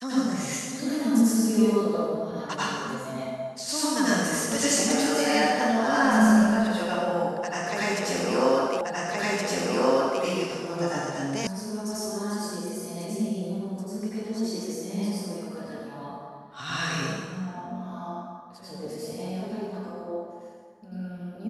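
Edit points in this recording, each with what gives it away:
8.81 repeat of the last 1.42 s
11.47 sound cut off

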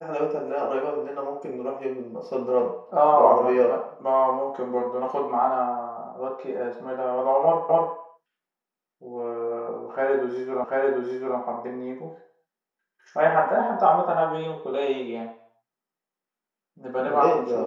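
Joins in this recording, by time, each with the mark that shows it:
7.69 repeat of the last 0.26 s
10.64 repeat of the last 0.74 s

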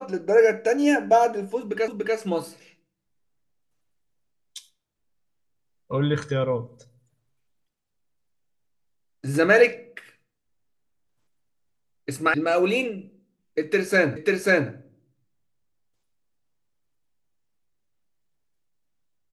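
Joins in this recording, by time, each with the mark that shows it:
1.88 repeat of the last 0.29 s
12.34 sound cut off
14.16 repeat of the last 0.54 s

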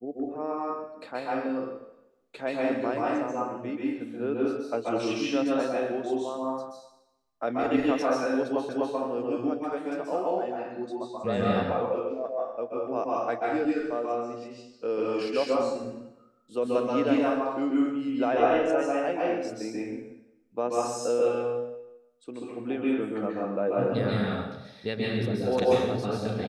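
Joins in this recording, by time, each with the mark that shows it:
8.69 repeat of the last 0.25 s

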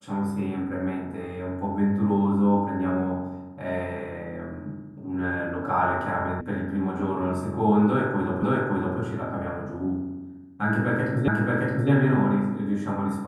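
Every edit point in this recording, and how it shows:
6.41 sound cut off
8.43 repeat of the last 0.56 s
11.28 repeat of the last 0.62 s

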